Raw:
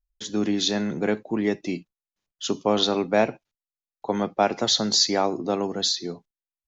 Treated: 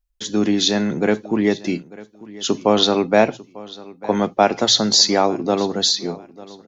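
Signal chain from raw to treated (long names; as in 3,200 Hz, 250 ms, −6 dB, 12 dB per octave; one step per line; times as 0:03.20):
mains-hum notches 60/120 Hz
on a send: repeating echo 896 ms, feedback 26%, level −20 dB
on the sum: level +6 dB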